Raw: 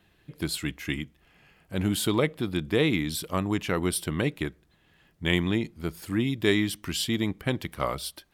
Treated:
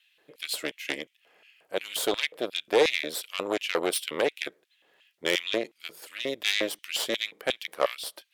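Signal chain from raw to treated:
harmonic generator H 8 −16 dB, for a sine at −7.5 dBFS
auto-filter high-pass square 2.8 Hz 500–2,700 Hz
level −2 dB

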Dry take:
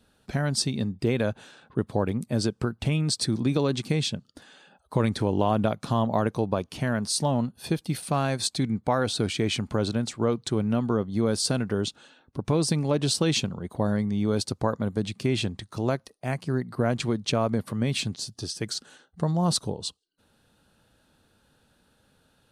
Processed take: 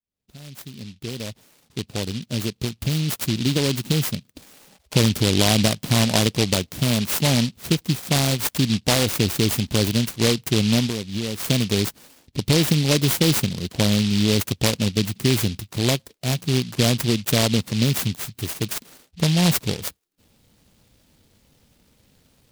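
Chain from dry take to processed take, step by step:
fade in at the beginning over 4.81 s
low-shelf EQ 190 Hz +4.5 dB
0:10.86–0:11.48: downward compressor 3 to 1, threshold −30 dBFS, peak gain reduction 9.5 dB
short delay modulated by noise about 3,500 Hz, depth 0.23 ms
level +4 dB

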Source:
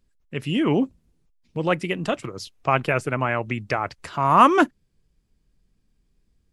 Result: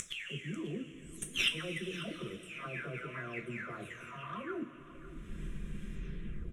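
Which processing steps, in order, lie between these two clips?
every frequency bin delayed by itself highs early, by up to 582 ms
low-shelf EQ 170 Hz −5.5 dB
in parallel at 0 dB: upward compression, threshold −24 dBFS
on the sum: leveller curve on the samples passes 2
reversed playback
downward compressor 8 to 1, threshold −20 dBFS, peak gain reduction 18.5 dB
reversed playback
phaser with its sweep stopped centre 2,000 Hz, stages 4
gate with flip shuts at −25 dBFS, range −25 dB
high-frequency loss of the air 68 metres
single-tap delay 543 ms −16.5 dB
coupled-rooms reverb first 0.25 s, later 4.5 s, from −19 dB, DRR 2.5 dB
level +8.5 dB

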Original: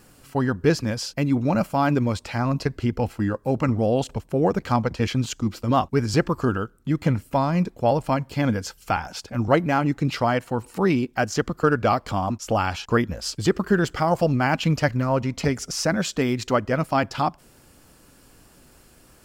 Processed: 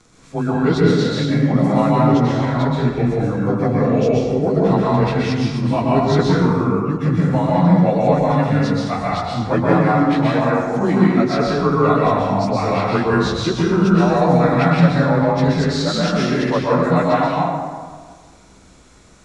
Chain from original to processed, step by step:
partials spread apart or drawn together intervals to 92%
low-pass filter 8,800 Hz 24 dB per octave
dense smooth reverb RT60 1.6 s, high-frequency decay 0.5×, pre-delay 110 ms, DRR −5 dB
level +2 dB

